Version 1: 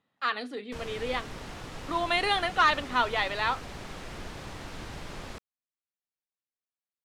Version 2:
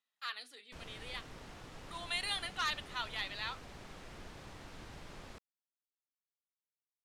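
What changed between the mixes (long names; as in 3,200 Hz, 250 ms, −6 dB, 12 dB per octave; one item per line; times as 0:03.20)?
speech: add first difference
background −10.0 dB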